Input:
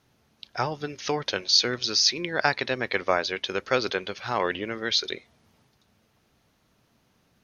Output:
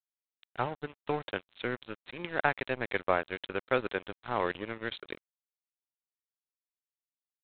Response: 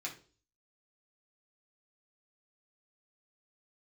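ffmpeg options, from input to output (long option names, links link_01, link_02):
-af "lowpass=frequency=2400:poles=1,aresample=8000,aeval=exprs='sgn(val(0))*max(abs(val(0))-0.0168,0)':channel_layout=same,aresample=44100,volume=-2.5dB"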